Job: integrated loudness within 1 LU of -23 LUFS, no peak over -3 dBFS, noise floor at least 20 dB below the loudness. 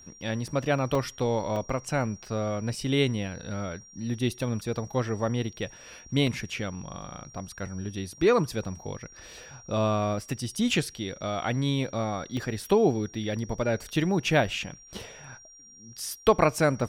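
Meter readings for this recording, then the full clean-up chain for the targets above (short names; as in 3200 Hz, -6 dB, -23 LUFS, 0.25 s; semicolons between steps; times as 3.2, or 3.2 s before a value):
dropouts 6; longest dropout 2.9 ms; steady tone 5700 Hz; tone level -49 dBFS; loudness -28.5 LUFS; peak -7.5 dBFS; loudness target -23.0 LUFS
-> interpolate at 0.95/1.56/6.27/7.02/10.57/12.37, 2.9 ms; notch 5700 Hz, Q 30; gain +5.5 dB; limiter -3 dBFS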